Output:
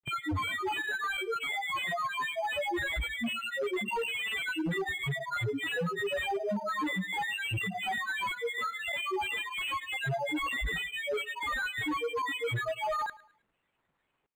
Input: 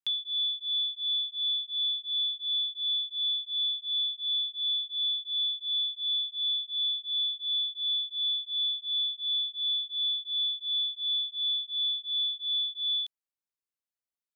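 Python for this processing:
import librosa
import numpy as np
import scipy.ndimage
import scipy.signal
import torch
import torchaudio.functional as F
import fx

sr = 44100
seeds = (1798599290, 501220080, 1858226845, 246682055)

p1 = fx.bin_compress(x, sr, power=0.6)
p2 = fx.high_shelf(p1, sr, hz=3300.0, db=-7.5)
p3 = fx.granulator(p2, sr, seeds[0], grain_ms=100.0, per_s=20.0, spray_ms=100.0, spread_st=12)
p4 = 10.0 ** (-32.0 / 20.0) * (np.abs((p3 / 10.0 ** (-32.0 / 20.0) + 3.0) % 4.0 - 2.0) - 1.0)
p5 = p4 + fx.echo_feedback(p4, sr, ms=107, feedback_pct=34, wet_db=-20.5, dry=0)
p6 = np.interp(np.arange(len(p5)), np.arange(len(p5))[::8], p5[::8])
y = F.gain(torch.from_numpy(p6), 5.5).numpy()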